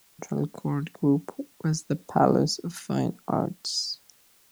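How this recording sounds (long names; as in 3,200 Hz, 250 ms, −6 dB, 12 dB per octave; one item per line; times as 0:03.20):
phaser sweep stages 2, 1 Hz, lowest notch 530–3,400 Hz
a quantiser's noise floor 10 bits, dither triangular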